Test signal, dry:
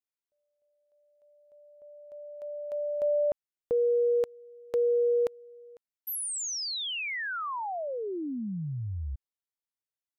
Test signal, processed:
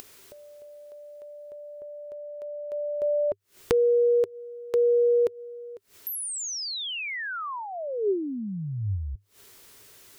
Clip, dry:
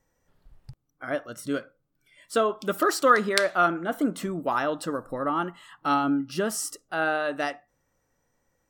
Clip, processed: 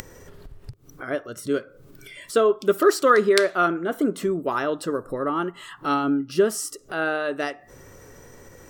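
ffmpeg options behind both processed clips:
-af "equalizer=f=100:t=o:w=0.33:g=7,equalizer=f=400:t=o:w=0.33:g=11,equalizer=f=800:t=o:w=0.33:g=-5,acompressor=mode=upward:threshold=0.0141:ratio=4:attack=18:release=125:knee=2.83:detection=peak,volume=1.12"

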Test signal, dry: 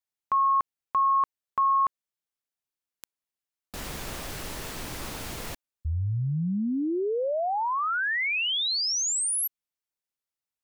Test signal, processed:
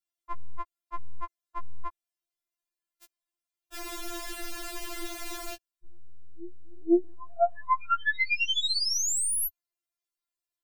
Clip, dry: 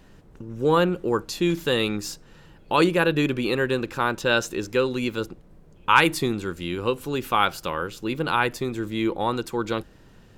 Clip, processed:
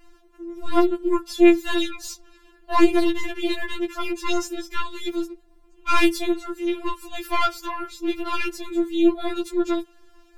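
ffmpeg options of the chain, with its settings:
-af "aeval=exprs='(tanh(4.47*val(0)+0.7)-tanh(0.7))/4.47':c=same,afftfilt=real='re*4*eq(mod(b,16),0)':imag='im*4*eq(mod(b,16),0)':win_size=2048:overlap=0.75,volume=1.78"

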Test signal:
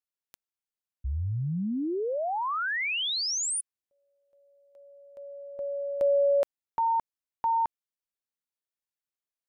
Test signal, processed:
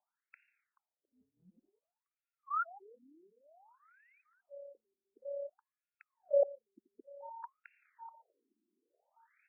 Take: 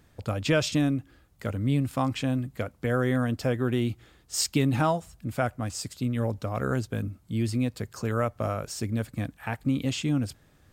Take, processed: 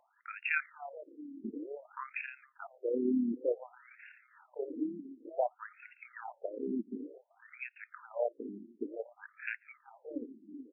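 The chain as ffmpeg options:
-filter_complex "[0:a]bandreject=f=1100:w=5.8,areverse,acompressor=mode=upward:threshold=0.0282:ratio=2.5:attack=0.7:release=366:knee=2.83:detection=peak,areverse,tremolo=f=35:d=0.462,lowpass=f=3900:t=q:w=4.9,asplit=2[s0][s1];[s1]adelay=430,lowpass=f=1900:p=1,volume=0.106,asplit=2[s2][s3];[s3]adelay=430,lowpass=f=1900:p=1,volume=0.54,asplit=2[s4][s5];[s5]adelay=430,lowpass=f=1900:p=1,volume=0.54,asplit=2[s6][s7];[s7]adelay=430,lowpass=f=1900:p=1,volume=0.54[s8];[s0][s2][s4][s6][s8]amix=inputs=5:normalize=0,afftfilt=real='re*between(b*sr/1024,270*pow(2000/270,0.5+0.5*sin(2*PI*0.55*pts/sr))/1.41,270*pow(2000/270,0.5+0.5*sin(2*PI*0.55*pts/sr))*1.41)':imag='im*between(b*sr/1024,270*pow(2000/270,0.5+0.5*sin(2*PI*0.55*pts/sr))/1.41,270*pow(2000/270,0.5+0.5*sin(2*PI*0.55*pts/sr))*1.41)':win_size=1024:overlap=0.75"

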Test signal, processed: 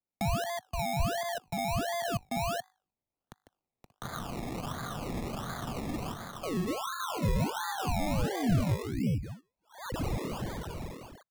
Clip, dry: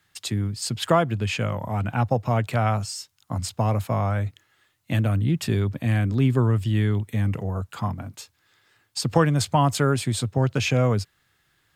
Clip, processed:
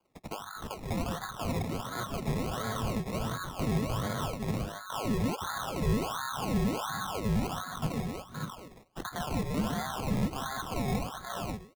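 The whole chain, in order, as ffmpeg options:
-filter_complex "[0:a]asuperstop=centerf=2600:order=20:qfactor=0.63,bandreject=f=50:t=h:w=6,bandreject=f=100:t=h:w=6,bandreject=f=150:t=h:w=6,bandreject=f=200:t=h:w=6,bandreject=f=250:t=h:w=6,bandreject=f=300:t=h:w=6,bandreject=f=350:t=h:w=6,bandreject=f=400:t=h:w=6,bandreject=f=450:t=h:w=6,aeval=exprs='val(0)*sin(2*PI*1200*n/s)':c=same,lowshelf=f=210:g=11.5,asplit=2[s0][s1];[s1]aecho=0:1:149|523|581:0.447|0.316|0.473[s2];[s0][s2]amix=inputs=2:normalize=0,dynaudnorm=f=130:g=31:m=1.78,highpass=f=110:w=0.5412,highpass=f=110:w=1.3066,equalizer=f=240:t=q:w=4:g=4,equalizer=f=340:t=q:w=4:g=-6,equalizer=f=720:t=q:w=4:g=8,equalizer=f=3000:t=q:w=4:g=-10,lowpass=f=9600:w=0.5412,lowpass=f=9600:w=1.3066,alimiter=limit=0.188:level=0:latency=1:release=28,acrusher=samples=23:mix=1:aa=0.000001:lfo=1:lforange=13.8:lforate=1.4,acrossover=split=230[s3][s4];[s4]acompressor=threshold=0.00158:ratio=1.5[s5];[s3][s5]amix=inputs=2:normalize=0"

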